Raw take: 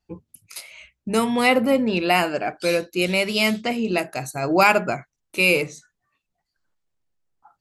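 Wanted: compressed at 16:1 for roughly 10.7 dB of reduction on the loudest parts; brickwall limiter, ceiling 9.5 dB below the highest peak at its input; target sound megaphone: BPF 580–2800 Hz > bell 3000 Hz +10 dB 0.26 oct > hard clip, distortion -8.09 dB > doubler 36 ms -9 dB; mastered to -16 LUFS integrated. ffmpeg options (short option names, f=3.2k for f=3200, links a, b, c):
-filter_complex "[0:a]acompressor=threshold=-22dB:ratio=16,alimiter=limit=-20dB:level=0:latency=1,highpass=580,lowpass=2.8k,equalizer=f=3k:t=o:w=0.26:g=10,asoftclip=type=hard:threshold=-32.5dB,asplit=2[a][b];[b]adelay=36,volume=-9dB[c];[a][c]amix=inputs=2:normalize=0,volume=20.5dB"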